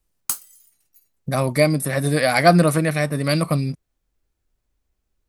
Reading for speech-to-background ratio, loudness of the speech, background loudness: 8.5 dB, -19.0 LUFS, -27.5 LUFS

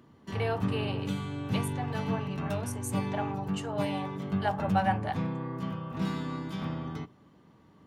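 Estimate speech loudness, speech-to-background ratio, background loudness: -36.0 LUFS, -2.0 dB, -34.0 LUFS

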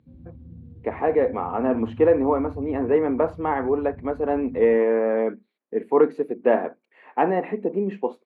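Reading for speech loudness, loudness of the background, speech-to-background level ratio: -23.0 LUFS, -42.5 LUFS, 19.5 dB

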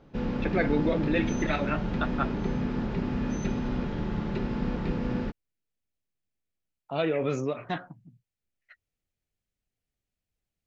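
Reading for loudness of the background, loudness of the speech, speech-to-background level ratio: -31.0 LUFS, -30.5 LUFS, 0.5 dB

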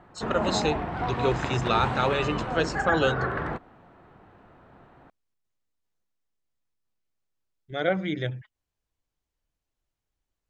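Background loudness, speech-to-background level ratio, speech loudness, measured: -30.0 LUFS, 2.0 dB, -28.0 LUFS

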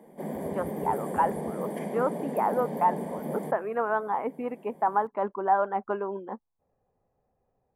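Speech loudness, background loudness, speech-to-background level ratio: -29.5 LUFS, -34.5 LUFS, 5.0 dB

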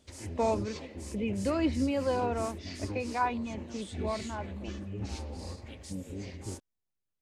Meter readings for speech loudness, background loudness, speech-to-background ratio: -33.0 LUFS, -41.0 LUFS, 8.0 dB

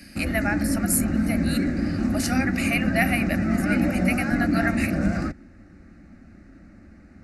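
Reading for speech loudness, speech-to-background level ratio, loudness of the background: -28.0 LUFS, -3.5 dB, -24.5 LUFS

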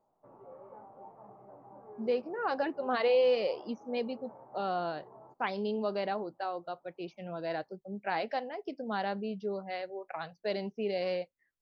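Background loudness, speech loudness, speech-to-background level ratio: -52.0 LUFS, -34.5 LUFS, 17.5 dB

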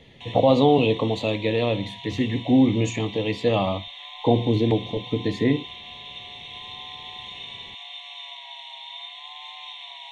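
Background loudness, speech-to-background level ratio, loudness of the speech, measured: -37.0 LUFS, 14.5 dB, -22.5 LUFS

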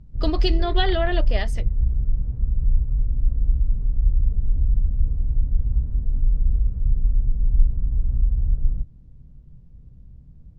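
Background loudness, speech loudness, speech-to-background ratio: -25.0 LUFS, -26.5 LUFS, -1.5 dB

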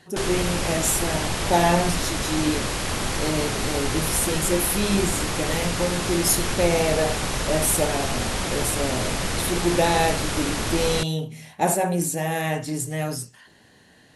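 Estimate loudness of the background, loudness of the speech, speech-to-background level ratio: -26.0 LUFS, -25.0 LUFS, 1.0 dB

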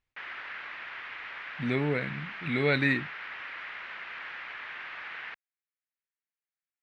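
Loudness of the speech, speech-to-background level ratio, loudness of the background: -29.5 LUFS, 10.0 dB, -39.5 LUFS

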